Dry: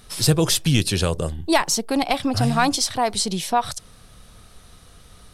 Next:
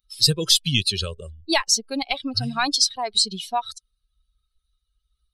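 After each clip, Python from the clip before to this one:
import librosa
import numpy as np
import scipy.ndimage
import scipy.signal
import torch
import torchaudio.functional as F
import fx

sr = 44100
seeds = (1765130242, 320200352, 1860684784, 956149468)

y = fx.bin_expand(x, sr, power=2.0)
y = fx.peak_eq(y, sr, hz=4200.0, db=14.0, octaves=1.6)
y = F.gain(torch.from_numpy(y), -3.5).numpy()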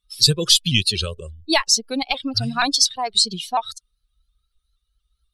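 y = fx.vibrato_shape(x, sr, shape='saw_up', rate_hz=4.2, depth_cents=100.0)
y = F.gain(torch.from_numpy(y), 2.5).numpy()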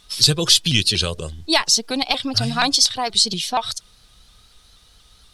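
y = fx.bin_compress(x, sr, power=0.6)
y = F.gain(torch.from_numpy(y), -1.5).numpy()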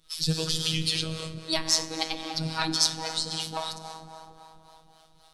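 y = fx.rev_plate(x, sr, seeds[0], rt60_s=3.7, hf_ratio=0.45, predelay_ms=0, drr_db=3.5)
y = fx.harmonic_tremolo(y, sr, hz=3.7, depth_pct=70, crossover_hz=430.0)
y = fx.robotise(y, sr, hz=160.0)
y = F.gain(torch.from_numpy(y), -5.0).numpy()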